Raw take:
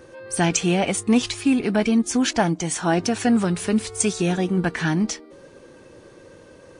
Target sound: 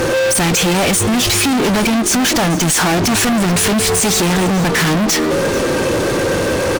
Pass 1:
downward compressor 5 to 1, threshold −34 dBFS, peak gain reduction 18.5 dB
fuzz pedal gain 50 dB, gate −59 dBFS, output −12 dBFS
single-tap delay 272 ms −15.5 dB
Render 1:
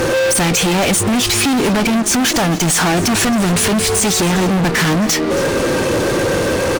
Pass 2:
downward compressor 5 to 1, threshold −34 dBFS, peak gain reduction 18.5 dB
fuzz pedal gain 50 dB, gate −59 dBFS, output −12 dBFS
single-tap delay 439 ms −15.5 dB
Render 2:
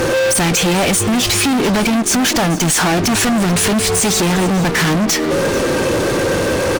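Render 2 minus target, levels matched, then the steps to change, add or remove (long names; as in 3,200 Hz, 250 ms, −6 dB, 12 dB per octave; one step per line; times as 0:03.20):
downward compressor: peak gain reduction +5 dB
change: downward compressor 5 to 1, threshold −27.5 dBFS, peak gain reduction 13 dB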